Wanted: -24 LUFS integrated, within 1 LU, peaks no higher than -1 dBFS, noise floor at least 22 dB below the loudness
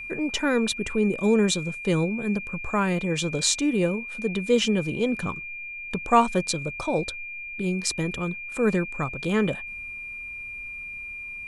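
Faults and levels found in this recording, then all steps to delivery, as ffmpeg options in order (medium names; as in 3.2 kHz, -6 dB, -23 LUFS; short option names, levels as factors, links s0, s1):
steady tone 2.4 kHz; tone level -34 dBFS; loudness -26.0 LUFS; peak level -5.5 dBFS; loudness target -24.0 LUFS
-> -af "bandreject=f=2400:w=30"
-af "volume=1.26"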